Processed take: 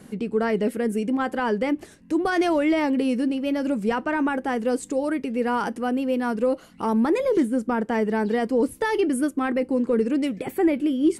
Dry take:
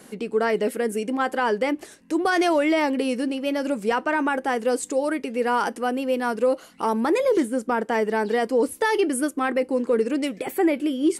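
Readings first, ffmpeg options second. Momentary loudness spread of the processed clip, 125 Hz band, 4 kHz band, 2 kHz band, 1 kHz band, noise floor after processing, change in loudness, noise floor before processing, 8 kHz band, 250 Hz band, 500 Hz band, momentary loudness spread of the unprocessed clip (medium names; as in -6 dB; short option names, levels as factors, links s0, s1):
4 LU, no reading, -4.0 dB, -3.0 dB, -3.0 dB, -49 dBFS, -0.5 dB, -49 dBFS, -6.0 dB, +2.5 dB, -1.5 dB, 5 LU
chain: -af "bass=f=250:g=13,treble=f=4000:g=-3,volume=0.708"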